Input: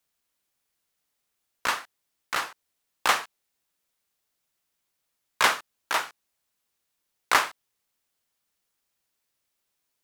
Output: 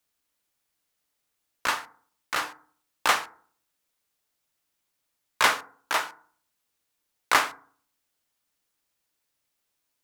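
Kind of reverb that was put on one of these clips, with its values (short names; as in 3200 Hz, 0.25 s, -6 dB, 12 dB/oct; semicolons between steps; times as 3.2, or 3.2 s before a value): FDN reverb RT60 0.5 s, low-frequency decay 1.2×, high-frequency decay 0.35×, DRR 11.5 dB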